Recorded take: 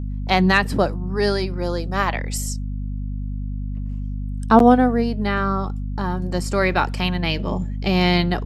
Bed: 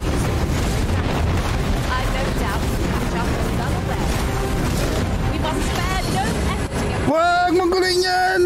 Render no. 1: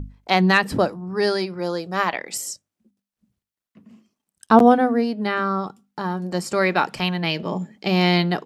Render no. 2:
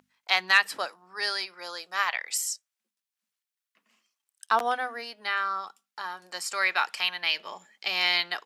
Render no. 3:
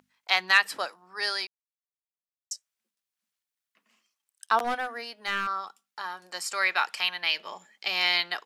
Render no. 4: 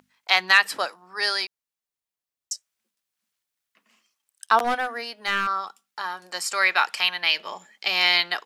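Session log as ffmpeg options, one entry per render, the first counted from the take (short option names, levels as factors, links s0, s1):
-af "bandreject=f=50:t=h:w=6,bandreject=f=100:t=h:w=6,bandreject=f=150:t=h:w=6,bandreject=f=200:t=h:w=6,bandreject=f=250:t=h:w=6"
-af "highpass=1400"
-filter_complex "[0:a]asettb=1/sr,asplit=3[s0][s1][s2];[s0]atrim=end=4.644[s3];[s1]atrim=start=4.64:end=5.47,asetpts=PTS-STARTPTS,afade=t=in:d=0.004:c=qsin,afade=t=out:st=0.826:d=0.004:c=qsin,aeval=exprs='clip(val(0),-1,0.0376)':c=same[s4];[s2]atrim=start=5.466[s5];[s3][s4]acrossfade=d=0.004:c1=hsin:c2=qsin[s6];[s6][s5]acrossfade=d=0.004:c1=qsin:c2=hsin,asplit=3[s7][s8][s9];[s7]atrim=end=1.47,asetpts=PTS-STARTPTS,afade=t=out:st=1.466:d=0.004:c=hsin[s10];[s8]atrim=start=1.47:end=2.51,asetpts=PTS-STARTPTS,volume=0[s11];[s9]atrim=start=2.51,asetpts=PTS-STARTPTS,afade=t=in:d=0.004:c=hsin[s12];[s10][s11][s12]concat=n=3:v=0:a=1"
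-af "volume=1.78,alimiter=limit=0.794:level=0:latency=1"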